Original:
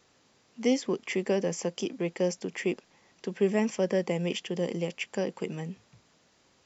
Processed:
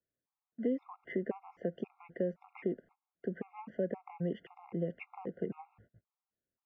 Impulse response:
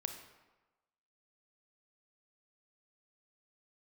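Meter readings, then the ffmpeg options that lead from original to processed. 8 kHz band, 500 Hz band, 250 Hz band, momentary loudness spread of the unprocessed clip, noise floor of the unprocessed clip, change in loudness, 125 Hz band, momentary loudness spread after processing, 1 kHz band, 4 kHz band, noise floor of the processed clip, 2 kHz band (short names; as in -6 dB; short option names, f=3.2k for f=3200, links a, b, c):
n/a, -9.0 dB, -8.0 dB, 11 LU, -66 dBFS, -9.0 dB, -7.0 dB, 8 LU, -7.5 dB, under -25 dB, under -85 dBFS, -13.5 dB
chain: -filter_complex "[0:a]acrossover=split=110|520|1100[a][b][c][d];[a]acontrast=21[e];[e][b][c][d]amix=inputs=4:normalize=0,agate=range=-28dB:threshold=-52dB:ratio=16:detection=peak,lowpass=f=1.7k:w=0.5412,lowpass=f=1.7k:w=1.3066,acompressor=threshold=-31dB:ratio=3,afftfilt=real='re*gt(sin(2*PI*1.9*pts/sr)*(1-2*mod(floor(b*sr/1024/700),2)),0)':imag='im*gt(sin(2*PI*1.9*pts/sr)*(1-2*mod(floor(b*sr/1024/700),2)),0)':win_size=1024:overlap=0.75"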